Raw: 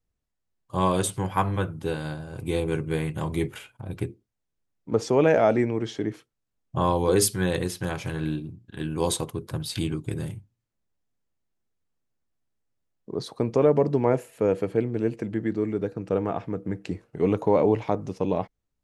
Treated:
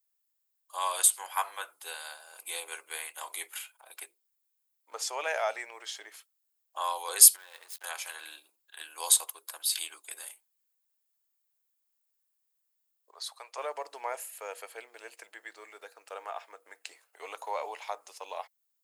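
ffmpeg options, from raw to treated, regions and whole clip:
ffmpeg -i in.wav -filter_complex "[0:a]asettb=1/sr,asplit=3[link_01][link_02][link_03];[link_01]atrim=end=7.364[link_04];[link_02]atrim=start=7.36:end=7.84,asetpts=PTS-STARTPTS,afade=type=in:duration=0.004:curve=qsin,afade=type=out:start_time=0.476:duration=0.004:curve=qsin,lowpass=frequency=2400:poles=1,acompressor=threshold=-32dB:ratio=10:attack=3.2:release=140:knee=1:detection=peak,aeval=exprs='sgn(val(0))*max(abs(val(0))-0.00335,0)':channel_layout=same[link_05];[link_03]atrim=start=7.836[link_06];[link_04][link_05]acrossfade=duration=0.004:curve1=hsin:curve2=qsin[link_07];[link_07][link_06]acrossfade=duration=0.004:curve1=qsin:curve2=hsin,asettb=1/sr,asplit=3[link_08][link_09][link_10];[link_08]atrim=end=13.114[link_11];[link_09]atrim=start=13.11:end=13.58,asetpts=PTS-STARTPTS,afade=type=in:duration=0.004:curve=qsin,afade=type=out:start_time=0.466:duration=0.004:curve=qsin,highpass=700,highshelf=frequency=8000:gain=-6.5[link_12];[link_10]atrim=start=13.576[link_13];[link_11][link_12]acrossfade=duration=0.004:curve1=hsin:curve2=qsin[link_14];[link_14][link_13]acrossfade=duration=0.004:curve1=qsin:curve2=hsin,highpass=frequency=690:width=0.5412,highpass=frequency=690:width=1.3066,aemphasis=mode=production:type=riaa,bandreject=frequency=5800:width=14,volume=-5dB" out.wav

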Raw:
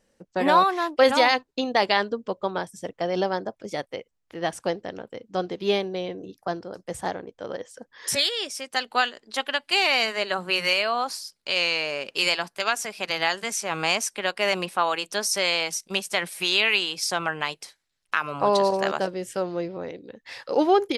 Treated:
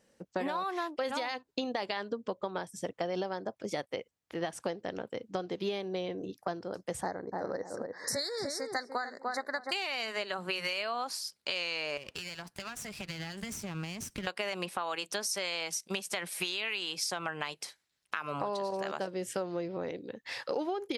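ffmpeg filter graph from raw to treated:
ffmpeg -i in.wav -filter_complex "[0:a]asettb=1/sr,asplit=3[link_01][link_02][link_03];[link_01]atrim=end=7.024[link_04];[link_02]atrim=start=7.02:end=9.72,asetpts=PTS-STARTPTS,afade=type=in:duration=0.004:curve=qsin,afade=type=out:start_time=2.696:duration=0.004:curve=qsin,asuperstop=centerf=2900:order=12:qfactor=1.6,highshelf=frequency=7700:gain=-8.5,asplit=2[link_05][link_06];[link_06]adelay=297,lowpass=frequency=1200:poles=1,volume=-5.5dB,asplit=2[link_07][link_08];[link_08]adelay=297,lowpass=frequency=1200:poles=1,volume=0.24,asplit=2[link_09][link_10];[link_10]adelay=297,lowpass=frequency=1200:poles=1,volume=0.24[link_11];[link_05][link_07][link_09][link_11]amix=inputs=4:normalize=0,atrim=end_sample=119070[link_12];[link_03]atrim=start=9.716[link_13];[link_04][link_12]acrossfade=duration=0.004:curve1=hsin:curve2=qsin[link_14];[link_14][link_13]acrossfade=duration=0.004:curve1=qsin:curve2=hsin,asettb=1/sr,asplit=3[link_15][link_16][link_17];[link_15]atrim=end=11.974[link_18];[link_16]atrim=start=11.97:end=14.27,asetpts=PTS-STARTPTS,afade=type=in:duration=0.004:curve=qsin,afade=type=out:start_time=2.296:duration=0.004:curve=qsin,aeval=exprs='if(lt(val(0),0),0.251*val(0),val(0))':channel_layout=same,acompressor=threshold=-35dB:ratio=12:attack=3.2:release=140:knee=1:detection=peak,asubboost=boost=10:cutoff=240[link_19];[link_17]atrim=start=14.266[link_20];[link_18][link_19]acrossfade=duration=0.004:curve1=hsin:curve2=qsin[link_21];[link_21][link_20]acrossfade=duration=0.004:curve1=qsin:curve2=hsin,highpass=67,alimiter=limit=-14dB:level=0:latency=1:release=147,acompressor=threshold=-31dB:ratio=6" out.wav

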